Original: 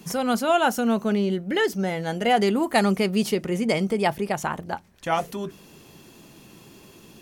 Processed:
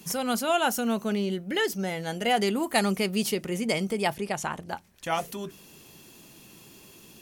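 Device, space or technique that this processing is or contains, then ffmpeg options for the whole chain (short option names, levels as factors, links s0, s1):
presence and air boost: -filter_complex "[0:a]asettb=1/sr,asplit=3[s0][s1][s2];[s0]atrim=end=4.144[s3];[s1]atrim=start=4.14:end=4.68,asetpts=PTS-STARTPTS,afade=t=in:d=0.004:c=qsin,afade=t=out:st=0.536:d=0.004:c=qsin,lowpass=10000[s4];[s2]atrim=start=4.676[s5];[s3][s4]acrossfade=d=0.004:c1=hsin:c2=qsin[s6];[s6][s5]acrossfade=d=0.004:c1=qsin:c2=hsin,equalizer=f=2700:t=o:w=0.77:g=2,highshelf=f=9800:g=6,equalizer=f=9900:t=o:w=2.8:g=5,volume=0.562"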